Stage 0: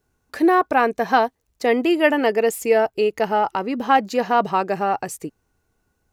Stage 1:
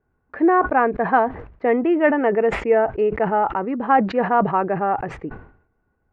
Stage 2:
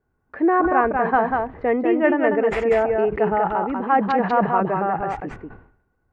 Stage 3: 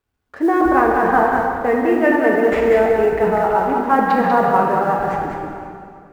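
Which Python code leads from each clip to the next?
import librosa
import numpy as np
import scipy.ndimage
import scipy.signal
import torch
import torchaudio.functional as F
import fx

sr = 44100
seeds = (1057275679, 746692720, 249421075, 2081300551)

y1 = scipy.signal.sosfilt(scipy.signal.butter(4, 1900.0, 'lowpass', fs=sr, output='sos'), x)
y1 = fx.sustainer(y1, sr, db_per_s=100.0)
y2 = y1 + 10.0 ** (-4.0 / 20.0) * np.pad(y1, (int(193 * sr / 1000.0), 0))[:len(y1)]
y2 = y2 * 10.0 ** (-2.0 / 20.0)
y3 = fx.law_mismatch(y2, sr, coded='A')
y3 = fx.rev_plate(y3, sr, seeds[0], rt60_s=2.4, hf_ratio=0.8, predelay_ms=0, drr_db=0.0)
y3 = y3 * 10.0 ** (1.5 / 20.0)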